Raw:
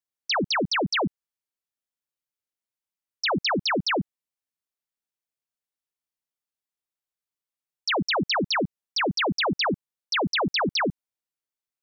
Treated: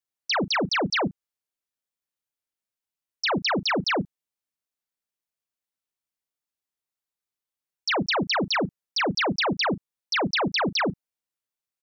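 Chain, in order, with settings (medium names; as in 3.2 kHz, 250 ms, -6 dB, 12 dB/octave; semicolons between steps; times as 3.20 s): doubling 36 ms -14 dB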